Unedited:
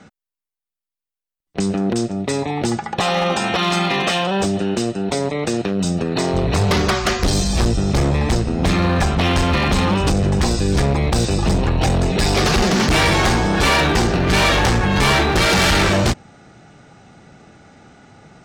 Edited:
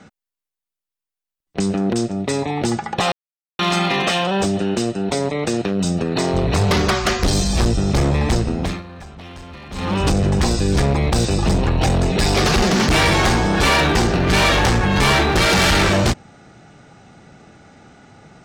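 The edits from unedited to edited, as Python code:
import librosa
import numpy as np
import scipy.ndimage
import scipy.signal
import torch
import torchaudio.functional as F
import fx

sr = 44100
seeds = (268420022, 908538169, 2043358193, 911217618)

y = fx.edit(x, sr, fx.silence(start_s=3.12, length_s=0.47),
    fx.fade_down_up(start_s=8.49, length_s=1.55, db=-20.0, fade_s=0.34), tone=tone)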